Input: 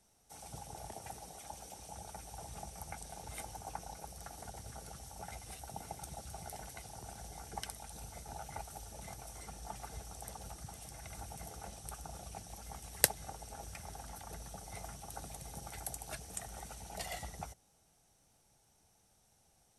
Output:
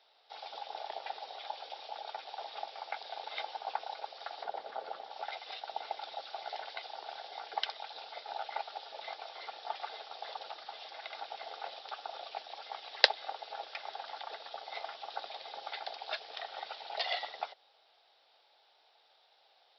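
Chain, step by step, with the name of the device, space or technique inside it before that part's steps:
0:04.44–0:05.11: tilt shelving filter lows +8.5 dB, about 1,500 Hz
musical greeting card (downsampling to 11,025 Hz; high-pass filter 520 Hz 24 dB per octave; parametric band 3,600 Hz +8.5 dB 0.5 octaves)
level +8 dB

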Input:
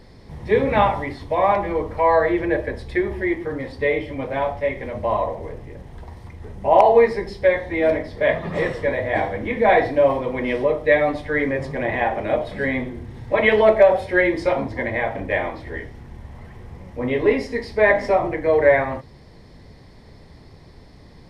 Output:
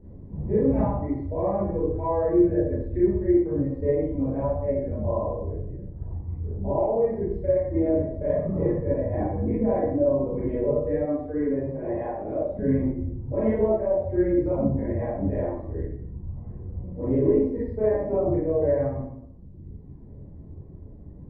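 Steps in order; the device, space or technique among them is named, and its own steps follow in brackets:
reverb reduction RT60 1.4 s
television next door (downward compressor 4 to 1, threshold −18 dBFS, peak gain reduction 8.5 dB; low-pass filter 390 Hz 12 dB per octave; convolution reverb RT60 0.75 s, pre-delay 27 ms, DRR −9.5 dB)
0:11.05–0:12.59: bass and treble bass −10 dB, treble −2 dB
level −4.5 dB

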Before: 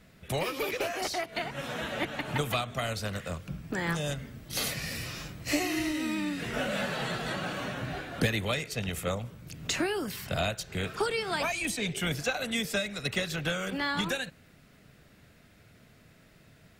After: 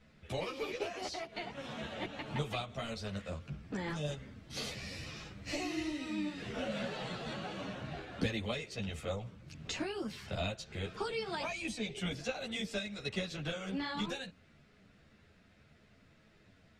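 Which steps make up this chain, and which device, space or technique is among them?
string-machine ensemble chorus (string-ensemble chorus; low-pass filter 5,700 Hz 12 dB per octave)
dynamic equaliser 1,600 Hz, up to −6 dB, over −48 dBFS, Q 1.2
level −2.5 dB

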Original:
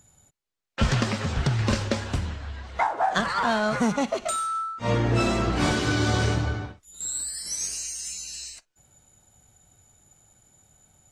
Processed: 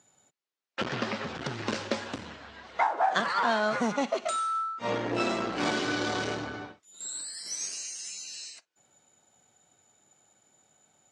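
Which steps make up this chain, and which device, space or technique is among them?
0:00.83–0:01.35: Bessel low-pass filter 4,500 Hz, order 2
public-address speaker with an overloaded transformer (saturating transformer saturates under 480 Hz; band-pass filter 260–6,300 Hz)
level −1.5 dB

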